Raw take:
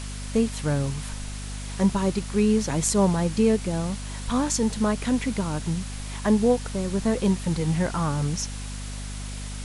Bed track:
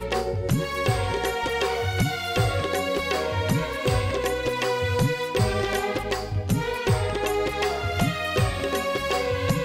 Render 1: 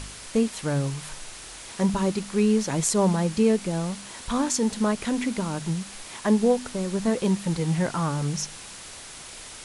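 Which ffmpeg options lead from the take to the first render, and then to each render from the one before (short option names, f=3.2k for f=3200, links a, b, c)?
-af "bandreject=f=50:t=h:w=4,bandreject=f=100:t=h:w=4,bandreject=f=150:t=h:w=4,bandreject=f=200:t=h:w=4,bandreject=f=250:t=h:w=4"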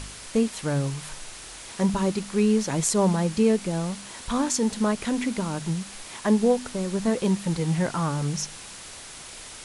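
-af anull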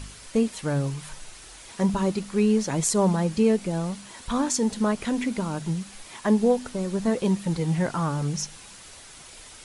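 -af "afftdn=nr=6:nf=-42"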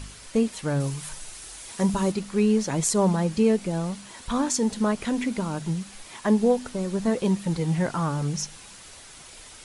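-filter_complex "[0:a]asettb=1/sr,asplit=3[a][b][c];[a]atrim=end=0.804[d];[b]atrim=start=0.8:end=2.12,asetpts=PTS-STARTPTS,afade=t=in:d=0.004:c=qsin,afade=t=out:st=1.316:d=0.004:c=qsin,highshelf=f=7.1k:g=10[e];[c]atrim=start=2.116[f];[d][e]acrossfade=d=0.004:c1=hsin:c2=qsin[g];[g][f]acrossfade=d=0.004:c1=qsin:c2=hsin"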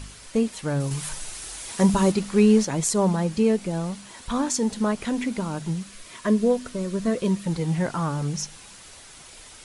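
-filter_complex "[0:a]asettb=1/sr,asplit=3[a][b][c];[a]atrim=end=5.864[d];[b]atrim=start=5.86:end=7.46,asetpts=PTS-STARTPTS,afade=t=in:d=0.004:c=qsin,afade=t=out:st=1.596:d=0.004:c=qsin,asuperstop=centerf=820:order=8:qfactor=4.2[e];[c]atrim=start=7.456[f];[d][e]acrossfade=d=0.004:c1=hsin:c2=qsin[g];[g][f]acrossfade=d=0.004:c1=qsin:c2=hsin,asplit=3[h][i][j];[h]atrim=end=0.912[k];[i]atrim=start=0.908:end=2.652,asetpts=PTS-STARTPTS,volume=4.5dB[l];[j]atrim=start=2.648[m];[k][l]acrossfade=d=0.004:c1=hsin:c2=hsin[n];[n][m]acrossfade=d=0.004:c1=hsin:c2=hsin"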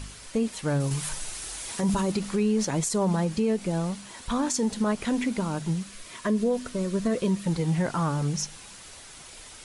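-af "alimiter=limit=-17dB:level=0:latency=1:release=62"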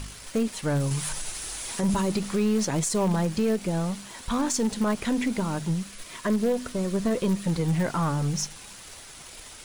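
-filter_complex "[0:a]asplit=2[a][b];[b]acrusher=bits=4:dc=4:mix=0:aa=0.000001,volume=-8dB[c];[a][c]amix=inputs=2:normalize=0,asoftclip=type=tanh:threshold=-15.5dB"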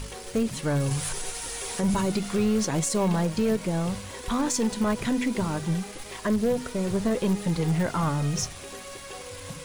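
-filter_complex "[1:a]volume=-16.5dB[a];[0:a][a]amix=inputs=2:normalize=0"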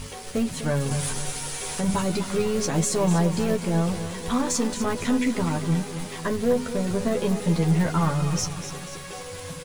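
-filter_complex "[0:a]asplit=2[a][b];[b]adelay=12,volume=-4dB[c];[a][c]amix=inputs=2:normalize=0,aecho=1:1:249|498|747|996|1245|1494:0.282|0.149|0.0792|0.042|0.0222|0.0118"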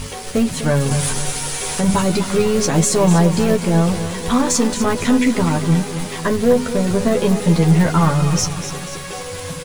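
-af "volume=8dB"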